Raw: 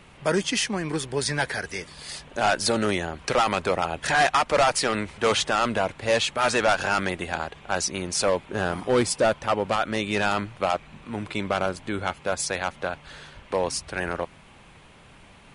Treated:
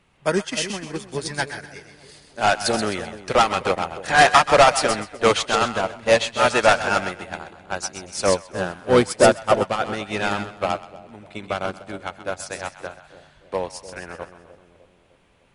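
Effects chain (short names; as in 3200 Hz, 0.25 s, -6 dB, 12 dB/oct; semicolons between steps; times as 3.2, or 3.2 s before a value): split-band echo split 670 Hz, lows 0.302 s, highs 0.129 s, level -6 dB; upward expander 2.5:1, over -30 dBFS; gain +8 dB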